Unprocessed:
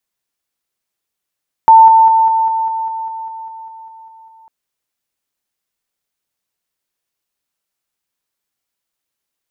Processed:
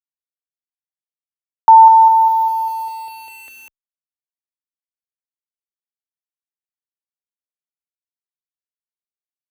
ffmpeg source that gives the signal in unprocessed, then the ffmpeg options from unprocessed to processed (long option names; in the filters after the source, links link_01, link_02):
-f lavfi -i "aevalsrc='pow(10,(-1.5-3*floor(t/0.2))/20)*sin(2*PI*895*t)':duration=2.8:sample_rate=44100"
-filter_complex "[0:a]acrossover=split=330[link_01][link_02];[link_01]acompressor=threshold=-49dB:ratio=6[link_03];[link_03][link_02]amix=inputs=2:normalize=0,aeval=exprs='val(0)*gte(abs(val(0)),0.0355)':channel_layout=same,asplit=2[link_04][link_05];[link_05]afreqshift=-0.3[link_06];[link_04][link_06]amix=inputs=2:normalize=1"